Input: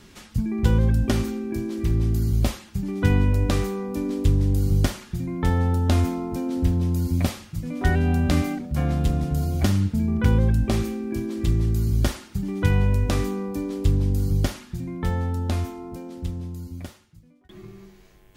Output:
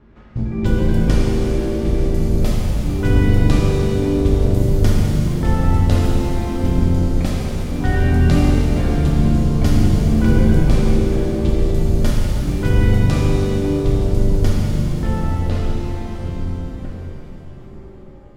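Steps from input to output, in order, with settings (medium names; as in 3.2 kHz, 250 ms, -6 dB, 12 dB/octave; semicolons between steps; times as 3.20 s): octave divider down 2 oct, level +1 dB; level-controlled noise filter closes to 1.2 kHz, open at -12.5 dBFS; pitch-shifted reverb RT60 3.5 s, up +7 st, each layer -8 dB, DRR -3.5 dB; trim -1.5 dB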